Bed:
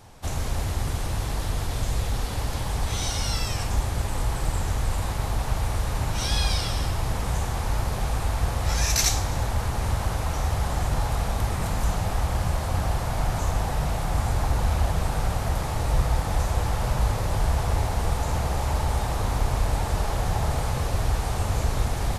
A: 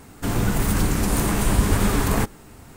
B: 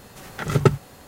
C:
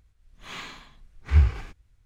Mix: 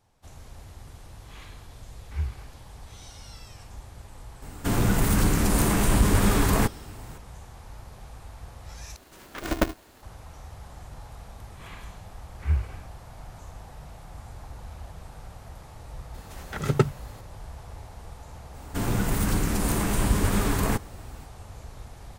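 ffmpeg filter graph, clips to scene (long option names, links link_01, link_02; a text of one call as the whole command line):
ffmpeg -i bed.wav -i cue0.wav -i cue1.wav -i cue2.wav -filter_complex "[3:a]asplit=2[link_01][link_02];[1:a]asplit=2[link_03][link_04];[2:a]asplit=2[link_05][link_06];[0:a]volume=-18dB[link_07];[link_03]acontrast=71[link_08];[link_05]aeval=exprs='val(0)*sgn(sin(2*PI*180*n/s))':channel_layout=same[link_09];[link_02]acrossover=split=3100[link_10][link_11];[link_11]acompressor=threshold=-57dB:ratio=4:attack=1:release=60[link_12];[link_10][link_12]amix=inputs=2:normalize=0[link_13];[link_07]asplit=2[link_14][link_15];[link_14]atrim=end=8.964[link_16];[link_09]atrim=end=1.07,asetpts=PTS-STARTPTS,volume=-7.5dB[link_17];[link_15]atrim=start=10.026[link_18];[link_01]atrim=end=2.05,asetpts=PTS-STARTPTS,volume=-11.5dB,afade=type=in:duration=0.004:curve=hsin,afade=type=out:start_time=2.046:duration=0.004:curve=hsin,adelay=830[link_19];[link_08]atrim=end=2.76,asetpts=PTS-STARTPTS,volume=-7dB,afade=type=in:duration=0.004:curve=hsin,afade=type=out:start_time=2.756:duration=0.004:curve=hsin,adelay=4420[link_20];[link_13]atrim=end=2.05,asetpts=PTS-STARTPTS,volume=-6.5dB,afade=type=in:duration=0.004:curve=hsin,afade=type=out:start_time=2.046:duration=0.004:curve=hsin,adelay=491274S[link_21];[link_06]atrim=end=1.07,asetpts=PTS-STARTPTS,volume=-4.5dB,afade=type=in:duration=0.004:curve=hsin,afade=type=out:start_time=1.066:duration=0.004:curve=hsin,adelay=16140[link_22];[link_04]atrim=end=2.76,asetpts=PTS-STARTPTS,volume=-4dB,afade=type=in:duration=0.05,afade=type=out:start_time=2.71:duration=0.05,adelay=18520[link_23];[link_16][link_17]acrossfade=duration=0.004:curve1=hsin:curve2=hsin[link_24];[link_24][link_18]acrossfade=duration=0.004:curve1=hsin:curve2=hsin[link_25];[link_25][link_19][link_20][link_21][link_22][link_23]amix=inputs=6:normalize=0" out.wav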